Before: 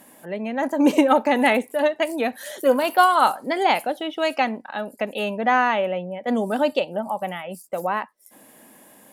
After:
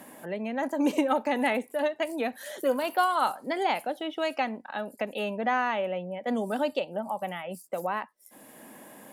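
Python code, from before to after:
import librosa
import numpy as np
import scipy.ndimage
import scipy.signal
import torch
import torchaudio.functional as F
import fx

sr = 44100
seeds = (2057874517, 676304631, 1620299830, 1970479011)

y = fx.band_squash(x, sr, depth_pct=40)
y = F.gain(torch.from_numpy(y), -7.5).numpy()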